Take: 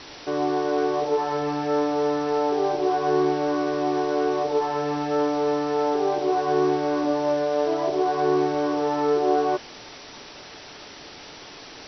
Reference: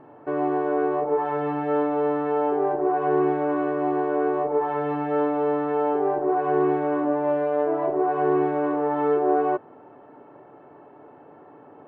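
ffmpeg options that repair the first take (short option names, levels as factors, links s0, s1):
-af "afwtdn=0.013"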